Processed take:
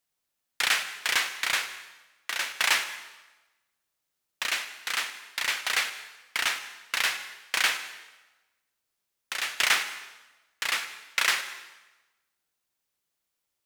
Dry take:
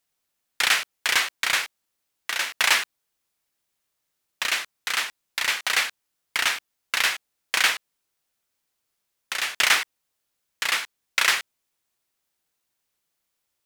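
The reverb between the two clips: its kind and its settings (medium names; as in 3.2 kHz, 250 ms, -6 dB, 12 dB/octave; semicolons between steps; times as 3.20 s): plate-style reverb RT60 1.1 s, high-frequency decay 0.9×, pre-delay 85 ms, DRR 12 dB; trim -4 dB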